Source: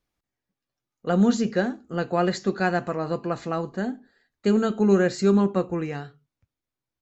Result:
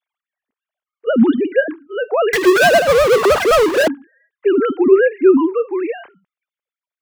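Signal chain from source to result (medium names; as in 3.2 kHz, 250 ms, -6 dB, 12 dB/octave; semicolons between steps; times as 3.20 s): formants replaced by sine waves; 2.33–3.88 s: power-law waveshaper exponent 0.35; trim +7 dB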